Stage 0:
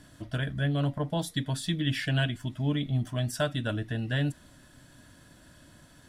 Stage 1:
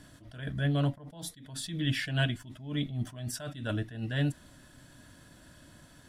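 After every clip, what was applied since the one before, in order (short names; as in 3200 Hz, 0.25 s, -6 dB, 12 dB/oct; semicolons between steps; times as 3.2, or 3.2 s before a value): attack slew limiter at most 100 dB/s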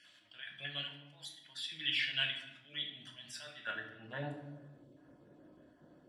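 random spectral dropouts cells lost 21%; band-pass sweep 2800 Hz -> 420 Hz, 3.42–4.8; reverb RT60 0.90 s, pre-delay 6 ms, DRR 2 dB; gain +4 dB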